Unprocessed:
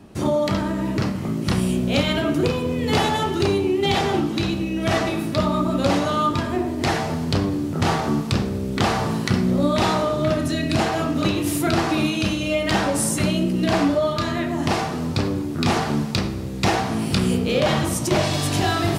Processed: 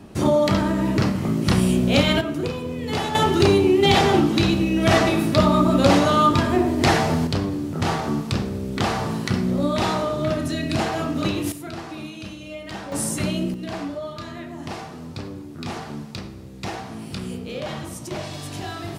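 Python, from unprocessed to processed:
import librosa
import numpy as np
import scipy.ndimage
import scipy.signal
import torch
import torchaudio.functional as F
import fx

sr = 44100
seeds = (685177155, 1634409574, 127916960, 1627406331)

y = fx.gain(x, sr, db=fx.steps((0.0, 2.5), (2.21, -5.5), (3.15, 4.0), (7.27, -2.5), (11.52, -13.5), (12.92, -3.5), (13.54, -11.0)))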